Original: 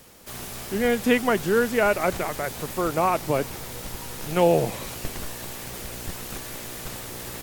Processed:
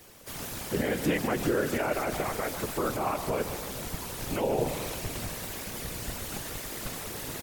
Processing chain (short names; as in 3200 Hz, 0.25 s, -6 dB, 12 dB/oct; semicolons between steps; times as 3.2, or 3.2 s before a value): limiter -17.5 dBFS, peak gain reduction 10 dB; feedback echo 0.145 s, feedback 59%, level -10.5 dB; whisperiser; gain -2 dB